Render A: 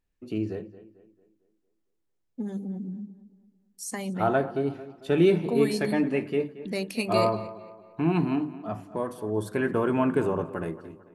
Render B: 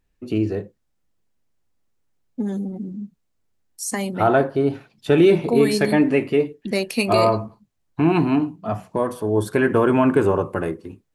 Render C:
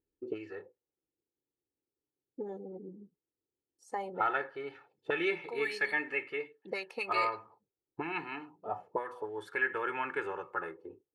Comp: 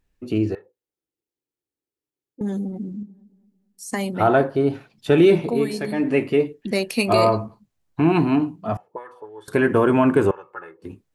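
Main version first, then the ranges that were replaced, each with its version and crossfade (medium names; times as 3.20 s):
B
0.55–2.41 s: from C
3.03–3.93 s: from A
5.51–6.07 s: from A, crossfade 0.24 s
8.77–9.48 s: from C
10.31–10.82 s: from C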